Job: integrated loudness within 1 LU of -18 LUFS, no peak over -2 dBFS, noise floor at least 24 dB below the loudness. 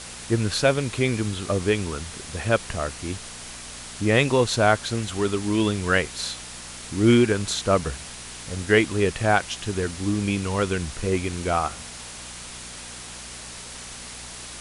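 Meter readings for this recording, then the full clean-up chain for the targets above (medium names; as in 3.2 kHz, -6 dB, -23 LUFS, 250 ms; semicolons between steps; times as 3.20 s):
hum 60 Hz; highest harmonic 240 Hz; hum level -44 dBFS; noise floor -39 dBFS; noise floor target -48 dBFS; loudness -23.5 LUFS; peak level -5.0 dBFS; loudness target -18.0 LUFS
-> de-hum 60 Hz, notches 4; noise print and reduce 9 dB; trim +5.5 dB; peak limiter -2 dBFS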